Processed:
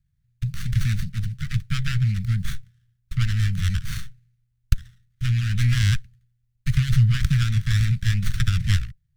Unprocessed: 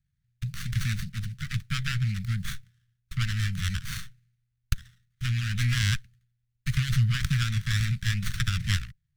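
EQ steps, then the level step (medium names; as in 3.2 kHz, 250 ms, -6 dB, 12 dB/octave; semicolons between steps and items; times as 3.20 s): bass shelf 160 Hz +9.5 dB; band-stop 850 Hz, Q 12; 0.0 dB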